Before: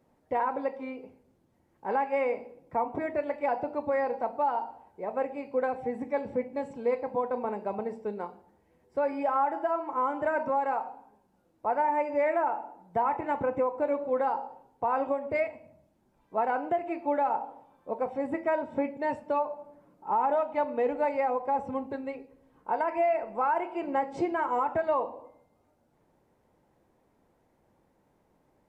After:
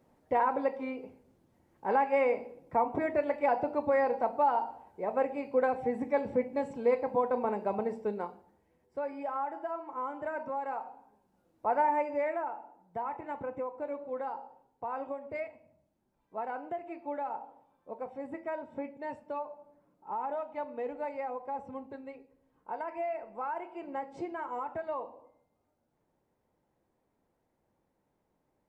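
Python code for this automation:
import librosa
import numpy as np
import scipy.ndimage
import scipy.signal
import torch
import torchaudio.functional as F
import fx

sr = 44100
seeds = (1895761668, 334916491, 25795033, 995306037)

y = fx.gain(x, sr, db=fx.line((8.07, 1.0), (9.08, -8.0), (10.53, -8.0), (11.83, 0.0), (12.53, -9.0)))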